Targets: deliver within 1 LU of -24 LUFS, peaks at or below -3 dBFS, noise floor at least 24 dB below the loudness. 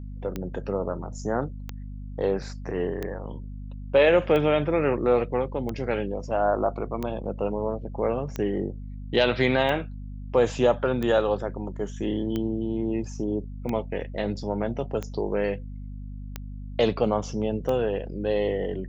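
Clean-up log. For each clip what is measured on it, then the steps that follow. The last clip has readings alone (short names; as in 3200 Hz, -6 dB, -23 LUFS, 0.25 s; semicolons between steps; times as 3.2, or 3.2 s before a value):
clicks 14; hum 50 Hz; harmonics up to 250 Hz; hum level -34 dBFS; loudness -26.5 LUFS; peak -8.5 dBFS; loudness target -24.0 LUFS
-> de-click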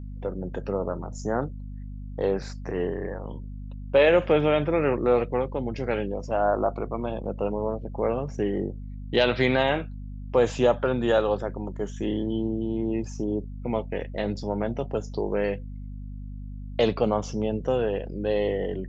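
clicks 0; hum 50 Hz; harmonics up to 250 Hz; hum level -34 dBFS
-> notches 50/100/150/200/250 Hz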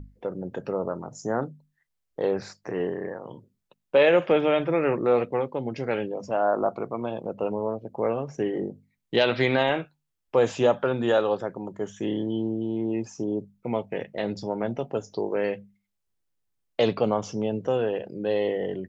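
hum none; loudness -26.5 LUFS; peak -8.5 dBFS; loudness target -24.0 LUFS
-> gain +2.5 dB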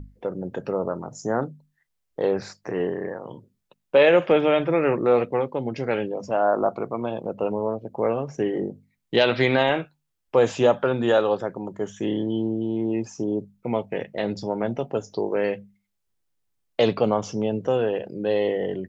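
loudness -24.0 LUFS; peak -6.0 dBFS; noise floor -77 dBFS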